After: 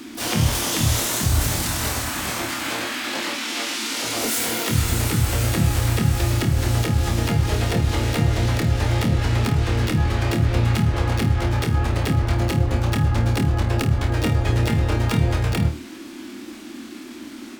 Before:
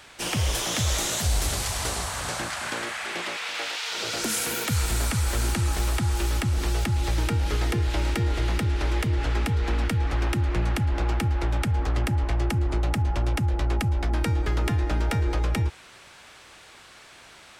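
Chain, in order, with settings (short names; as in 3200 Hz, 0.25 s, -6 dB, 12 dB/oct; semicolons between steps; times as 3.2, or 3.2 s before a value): harmoniser +7 st -2 dB, +12 st -4 dB; flutter echo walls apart 4.5 m, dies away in 0.27 s; band noise 220–350 Hz -37 dBFS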